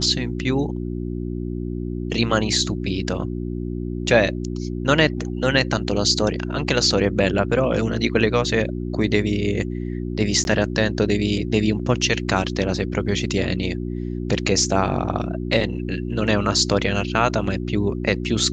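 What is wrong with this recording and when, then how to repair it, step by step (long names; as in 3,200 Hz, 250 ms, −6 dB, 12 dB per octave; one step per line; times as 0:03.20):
mains hum 60 Hz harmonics 6 −27 dBFS
0:10.44–0:10.45: drop-out 11 ms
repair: hum removal 60 Hz, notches 6
repair the gap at 0:10.44, 11 ms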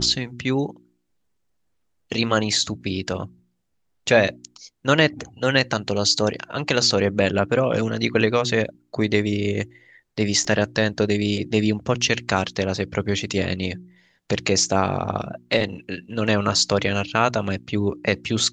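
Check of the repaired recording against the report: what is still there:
none of them is left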